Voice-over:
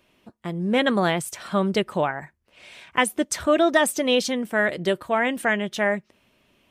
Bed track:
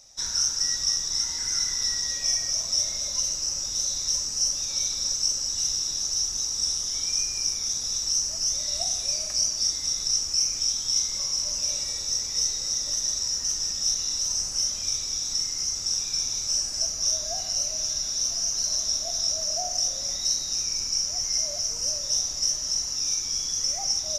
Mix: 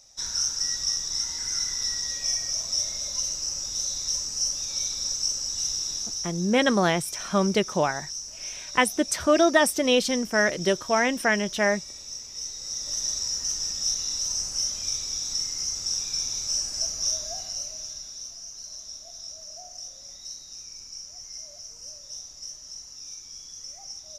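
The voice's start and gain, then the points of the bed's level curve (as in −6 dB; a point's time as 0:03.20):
5.80 s, −0.5 dB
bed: 0:05.95 −2 dB
0:06.43 −10.5 dB
0:12.38 −10.5 dB
0:13.02 −1.5 dB
0:17.07 −1.5 dB
0:18.41 −14 dB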